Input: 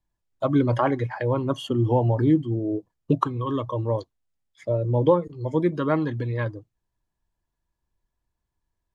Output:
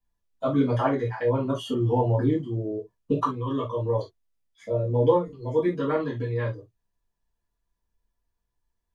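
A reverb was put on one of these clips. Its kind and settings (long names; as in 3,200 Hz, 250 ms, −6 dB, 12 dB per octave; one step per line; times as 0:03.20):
reverb whose tail is shaped and stops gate 90 ms falling, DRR −7.5 dB
level −9.5 dB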